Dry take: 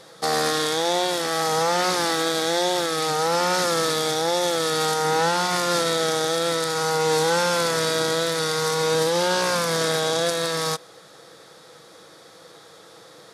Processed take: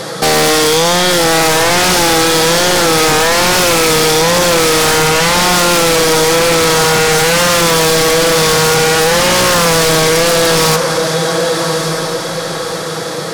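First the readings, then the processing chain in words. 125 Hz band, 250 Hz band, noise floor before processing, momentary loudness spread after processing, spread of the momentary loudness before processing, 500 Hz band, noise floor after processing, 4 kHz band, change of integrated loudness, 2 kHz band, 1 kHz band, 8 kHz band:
+15.0 dB, +13.0 dB, -48 dBFS, 6 LU, 2 LU, +11.5 dB, -20 dBFS, +12.5 dB, +12.0 dB, +14.0 dB, +10.5 dB, +15.0 dB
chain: in parallel at 0 dB: compressor, threshold -34 dBFS, peak gain reduction 15.5 dB; on the sum: bell 150 Hz +4.5 dB 1.7 oct; notch 3700 Hz, Q 16; soft clip -14.5 dBFS, distortion -18 dB; diffused feedback echo 1.191 s, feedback 41%, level -10 dB; sine folder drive 14 dB, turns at -7.5 dBFS

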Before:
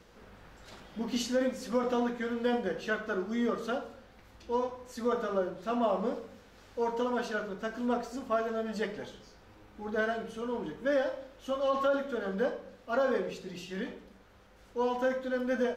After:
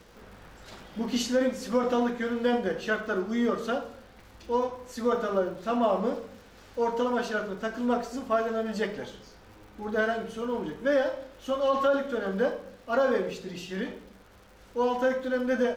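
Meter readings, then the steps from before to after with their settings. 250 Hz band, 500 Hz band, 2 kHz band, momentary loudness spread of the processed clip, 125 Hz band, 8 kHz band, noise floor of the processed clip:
+4.0 dB, +4.0 dB, +4.0 dB, 12 LU, +4.0 dB, +4.0 dB, -53 dBFS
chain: crackle 150/s -51 dBFS; gain +4 dB

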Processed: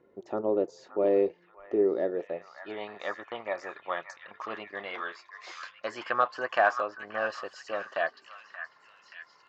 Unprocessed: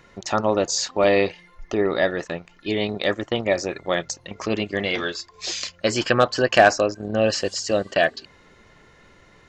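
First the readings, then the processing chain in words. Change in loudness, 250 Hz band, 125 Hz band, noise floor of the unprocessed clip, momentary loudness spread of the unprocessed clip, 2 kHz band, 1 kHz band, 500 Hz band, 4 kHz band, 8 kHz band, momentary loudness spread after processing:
-9.0 dB, -10.5 dB, -22.0 dB, -54 dBFS, 11 LU, -9.0 dB, -7.0 dB, -8.5 dB, -19.0 dB, -27.0 dB, 17 LU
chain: delay with a stepping band-pass 0.579 s, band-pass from 1500 Hz, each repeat 0.7 oct, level -6.5 dB; band-pass sweep 390 Hz -> 1100 Hz, 2.06–2.89; gain -1.5 dB

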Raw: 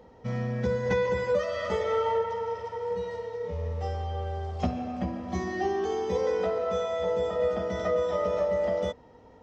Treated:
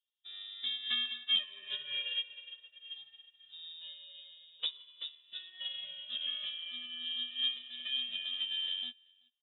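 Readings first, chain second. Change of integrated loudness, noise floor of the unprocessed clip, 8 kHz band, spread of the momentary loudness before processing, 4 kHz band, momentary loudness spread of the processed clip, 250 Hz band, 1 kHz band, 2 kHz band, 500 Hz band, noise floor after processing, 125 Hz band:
-6.5 dB, -53 dBFS, n/a, 7 LU, +14.5 dB, 16 LU, under -25 dB, under -30 dB, -7.0 dB, under -40 dB, -69 dBFS, under -40 dB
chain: feedback echo 0.382 s, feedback 22%, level -11.5 dB; inverted band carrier 3700 Hz; upward expander 2.5:1, over -46 dBFS; gain -4.5 dB

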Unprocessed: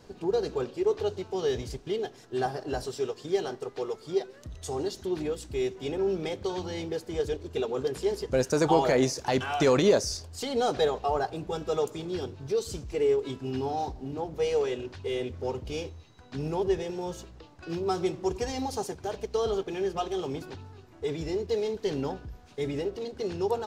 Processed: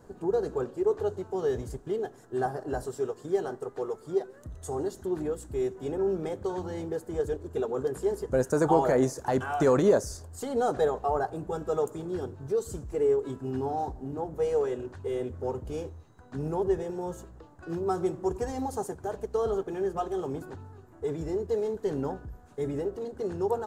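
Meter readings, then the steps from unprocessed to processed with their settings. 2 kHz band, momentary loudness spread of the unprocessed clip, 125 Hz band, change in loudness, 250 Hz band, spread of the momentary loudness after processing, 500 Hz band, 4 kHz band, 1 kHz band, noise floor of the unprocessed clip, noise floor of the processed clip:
-3.5 dB, 10 LU, 0.0 dB, -0.5 dB, 0.0 dB, 10 LU, 0.0 dB, -13.0 dB, 0.0 dB, -52 dBFS, -53 dBFS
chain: band shelf 3500 Hz -13 dB

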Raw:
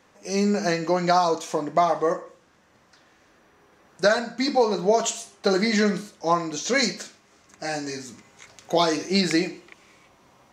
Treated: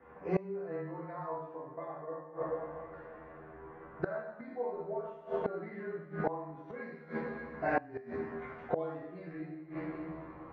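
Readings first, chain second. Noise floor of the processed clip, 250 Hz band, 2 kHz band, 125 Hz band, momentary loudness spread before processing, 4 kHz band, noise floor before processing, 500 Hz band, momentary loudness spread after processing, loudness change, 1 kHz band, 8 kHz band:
-52 dBFS, -15.0 dB, -15.0 dB, -11.5 dB, 11 LU, under -40 dB, -59 dBFS, -13.0 dB, 11 LU, -16.0 dB, -15.0 dB, under -40 dB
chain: LPF 1700 Hz 24 dB/oct; resonator 83 Hz, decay 0.21 s, harmonics all, mix 100%; two-slope reverb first 0.83 s, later 2.7 s, from -18 dB, DRR -6.5 dB; frequency shift -15 Hz; flipped gate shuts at -24 dBFS, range -24 dB; gain +6 dB

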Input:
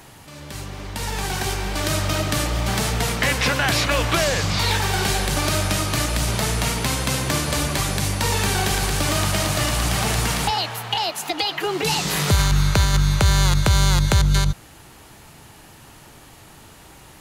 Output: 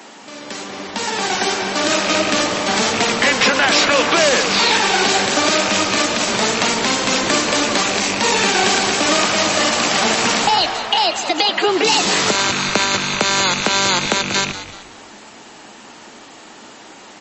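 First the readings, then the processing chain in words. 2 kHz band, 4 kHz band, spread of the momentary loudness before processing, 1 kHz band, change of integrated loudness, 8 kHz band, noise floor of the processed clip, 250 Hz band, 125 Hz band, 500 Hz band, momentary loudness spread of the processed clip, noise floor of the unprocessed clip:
+7.5 dB, +7.5 dB, 7 LU, +7.5 dB, +5.5 dB, +5.5 dB, -40 dBFS, +4.5 dB, -12.0 dB, +7.5 dB, 5 LU, -46 dBFS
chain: rattling part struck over -20 dBFS, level -17 dBFS; elliptic high-pass 210 Hz, stop band 60 dB; frequency-shifting echo 0.19 s, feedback 37%, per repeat -99 Hz, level -13 dB; maximiser +11 dB; gain -2.5 dB; MP3 32 kbps 32000 Hz

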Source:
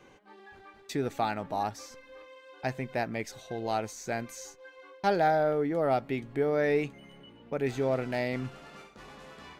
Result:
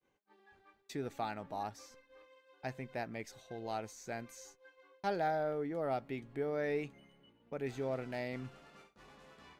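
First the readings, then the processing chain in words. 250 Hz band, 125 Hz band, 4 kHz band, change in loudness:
-9.0 dB, -9.0 dB, -9.0 dB, -9.0 dB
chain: expander -47 dBFS; gain -9 dB

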